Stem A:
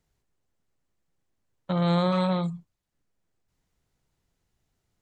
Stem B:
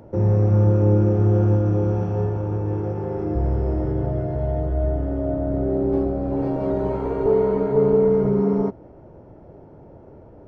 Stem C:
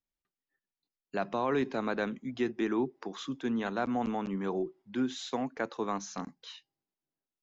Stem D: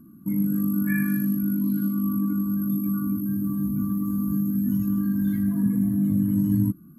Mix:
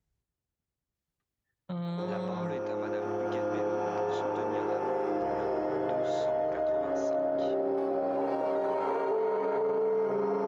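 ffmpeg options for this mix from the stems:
-filter_complex "[0:a]lowshelf=f=170:g=10.5,alimiter=limit=-16dB:level=0:latency=1,volume=-11dB[a];[1:a]highpass=630,alimiter=level_in=2.5dB:limit=-24dB:level=0:latency=1:release=44,volume=-2.5dB,dynaudnorm=f=430:g=7:m=10.5dB,adelay=1850,volume=-0.5dB[b];[2:a]highpass=370,acompressor=threshold=-39dB:ratio=3,adelay=950,volume=-0.5dB[c];[a][b][c]amix=inputs=3:normalize=0,highpass=41,acompressor=threshold=-31dB:ratio=2"

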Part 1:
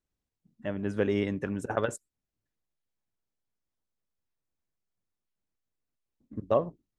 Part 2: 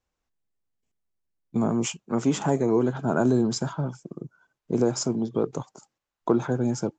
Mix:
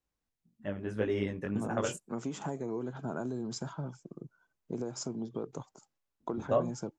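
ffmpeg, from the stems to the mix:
-filter_complex "[0:a]flanger=delay=17:depth=5.8:speed=1.8,volume=-1dB[a];[1:a]acompressor=threshold=-24dB:ratio=6,volume=-8.5dB[b];[a][b]amix=inputs=2:normalize=0"

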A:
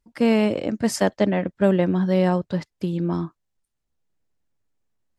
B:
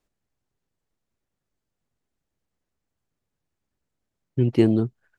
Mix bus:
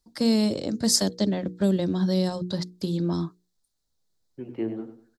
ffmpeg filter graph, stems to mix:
-filter_complex "[0:a]highshelf=f=3.3k:t=q:w=3:g=7,volume=-1dB[a];[1:a]acrossover=split=240 2700:gain=0.224 1 0.0794[b][c][d];[b][c][d]amix=inputs=3:normalize=0,flanger=delay=9.7:depth=8.3:regen=56:speed=1.4:shape=sinusoidal,volume=-5.5dB,asplit=2[e][f];[f]volume=-10.5dB,aecho=0:1:97|194|291|388:1|0.28|0.0784|0.022[g];[a][e][g]amix=inputs=3:normalize=0,bandreject=f=60:t=h:w=6,bandreject=f=120:t=h:w=6,bandreject=f=180:t=h:w=6,bandreject=f=240:t=h:w=6,bandreject=f=300:t=h:w=6,bandreject=f=360:t=h:w=6,bandreject=f=420:t=h:w=6,bandreject=f=480:t=h:w=6,acrossover=split=380|3000[h][i][j];[i]acompressor=threshold=-33dB:ratio=6[k];[h][k][j]amix=inputs=3:normalize=0"

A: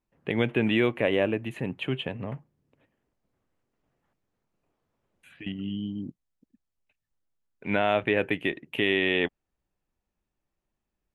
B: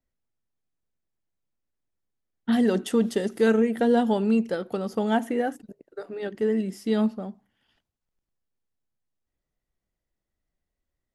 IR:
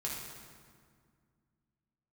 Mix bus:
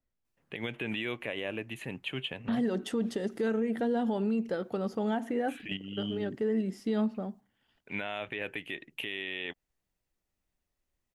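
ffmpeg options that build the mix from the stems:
-filter_complex "[0:a]crystalizer=i=7.5:c=0,adelay=250,volume=-3dB[a];[1:a]volume=-2dB,asplit=2[b][c];[c]apad=whole_len=502544[d];[a][d]sidechaingate=range=-6dB:threshold=-48dB:ratio=16:detection=peak[e];[e][b]amix=inputs=2:normalize=0,highshelf=f=6.7k:g=-11.5,alimiter=limit=-22.5dB:level=0:latency=1:release=108"

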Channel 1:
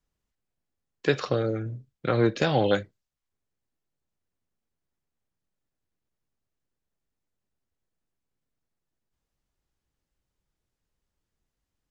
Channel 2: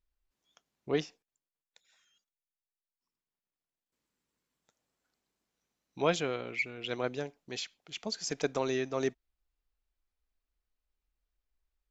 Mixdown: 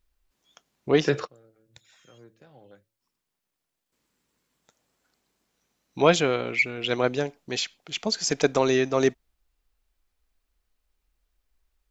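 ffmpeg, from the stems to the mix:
-filter_complex "[0:a]equalizer=f=3.7k:w=0.82:g=-6.5,bandreject=f=110.9:t=h:w=4,bandreject=f=221.8:t=h:w=4,bandreject=f=332.7:t=h:w=4,bandreject=f=443.6:t=h:w=4,bandreject=f=554.5:t=h:w=4,volume=0.5dB[a];[1:a]acontrast=81,volume=3dB,asplit=2[b][c];[c]apad=whole_len=525146[d];[a][d]sidechaingate=range=-30dB:threshold=-50dB:ratio=16:detection=peak[e];[e][b]amix=inputs=2:normalize=0"

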